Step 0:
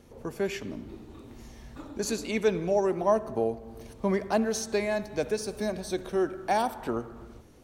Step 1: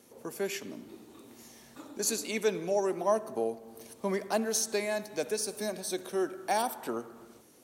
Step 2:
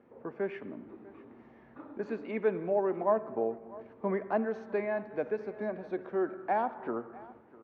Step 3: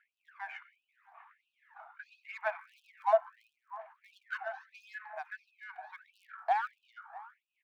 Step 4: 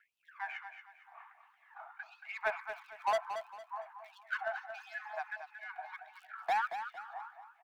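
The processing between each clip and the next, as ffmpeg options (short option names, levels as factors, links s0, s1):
-af "highpass=210,equalizer=f=12000:t=o:w=1.7:g=13,volume=0.668"
-af "lowpass=f=1900:w=0.5412,lowpass=f=1900:w=1.3066,aecho=1:1:649:0.0944"
-af "adynamicsmooth=sensitivity=4:basefreq=2900,aphaser=in_gain=1:out_gain=1:delay=1.4:decay=0.55:speed=0.79:type=sinusoidal,afftfilt=real='re*gte(b*sr/1024,630*pow(2500/630,0.5+0.5*sin(2*PI*1.5*pts/sr)))':imag='im*gte(b*sr/1024,630*pow(2500/630,0.5+0.5*sin(2*PI*1.5*pts/sr)))':win_size=1024:overlap=0.75,volume=1.41"
-filter_complex "[0:a]acrossover=split=1100|1400|1800[s0][s1][s2][s3];[s0]volume=50.1,asoftclip=hard,volume=0.02[s4];[s4][s1][s2][s3]amix=inputs=4:normalize=0,aecho=1:1:228|456|684|912:0.355|0.114|0.0363|0.0116,volume=1.26"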